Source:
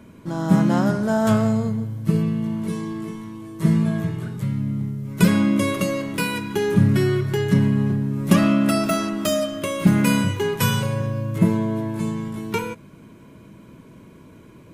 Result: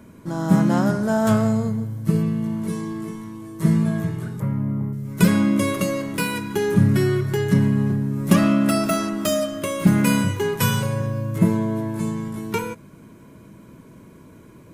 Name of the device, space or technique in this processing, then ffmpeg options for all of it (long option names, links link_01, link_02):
exciter from parts: -filter_complex "[0:a]asplit=2[link_01][link_02];[link_02]highpass=frequency=4400:poles=1,asoftclip=type=tanh:threshold=-34.5dB,highpass=frequency=2000:width=0.5412,highpass=frequency=2000:width=1.3066,volume=-4dB[link_03];[link_01][link_03]amix=inputs=2:normalize=0,asettb=1/sr,asplit=3[link_04][link_05][link_06];[link_04]atrim=end=4.404[link_07];[link_05]atrim=start=4.4:end=4.93,asetpts=PTS-STARTPTS,afade=type=in:duration=0.004:curve=qsin,afade=type=out:start_time=0.526:duration=0.004:curve=qsin,equalizer=frequency=500:width_type=o:width=1:gain=6,equalizer=frequency=1000:width_type=o:width=1:gain=8,equalizer=frequency=4000:width_type=o:width=1:gain=-12,equalizer=frequency=8000:width_type=o:width=1:gain=-12[link_08];[link_06]atrim=start=4.926[link_09];[link_07][link_08]acrossfade=duration=0.004:curve1=hsin:curve2=qsin[link_10];[link_10][link_09]acrossfade=duration=0.004:curve1=qsin:curve2=hsin"